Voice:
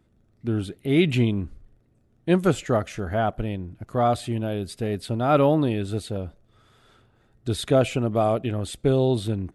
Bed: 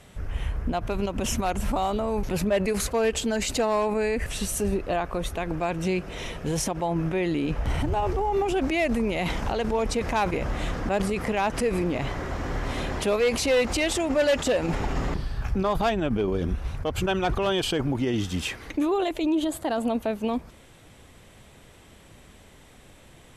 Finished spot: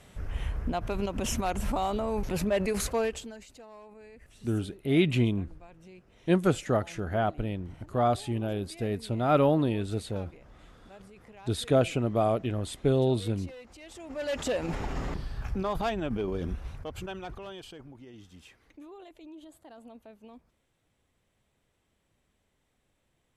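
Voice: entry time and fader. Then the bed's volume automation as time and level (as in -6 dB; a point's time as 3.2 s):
4.00 s, -4.0 dB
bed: 3 s -3.5 dB
3.49 s -25.5 dB
13.79 s -25.5 dB
14.43 s -6 dB
16.48 s -6 dB
17.97 s -23.5 dB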